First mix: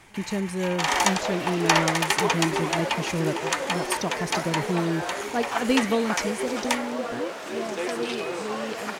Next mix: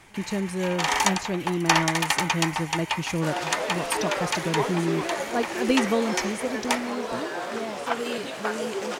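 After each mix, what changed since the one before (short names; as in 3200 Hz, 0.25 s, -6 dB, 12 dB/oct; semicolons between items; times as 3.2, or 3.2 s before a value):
second sound: entry +2.35 s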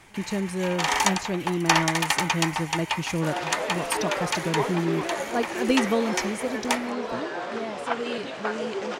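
second sound: add air absorption 95 m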